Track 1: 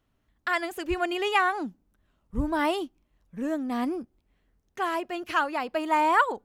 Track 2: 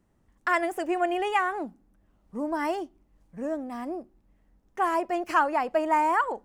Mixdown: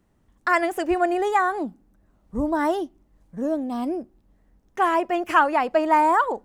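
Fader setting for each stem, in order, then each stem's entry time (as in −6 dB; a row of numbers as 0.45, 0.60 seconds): −4.0, +2.5 decibels; 0.00, 0.00 seconds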